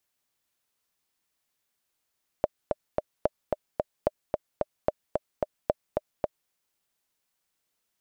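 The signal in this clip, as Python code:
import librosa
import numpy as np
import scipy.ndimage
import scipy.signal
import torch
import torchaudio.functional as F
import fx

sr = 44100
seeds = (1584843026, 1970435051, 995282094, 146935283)

y = fx.click_track(sr, bpm=221, beats=3, bars=5, hz=605.0, accent_db=3.0, level_db=-9.0)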